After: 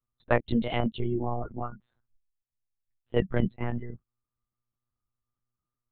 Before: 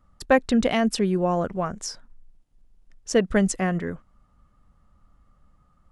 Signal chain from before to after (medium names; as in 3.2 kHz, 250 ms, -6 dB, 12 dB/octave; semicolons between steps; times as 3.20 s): spectral noise reduction 24 dB; monotone LPC vocoder at 8 kHz 120 Hz; trim -5 dB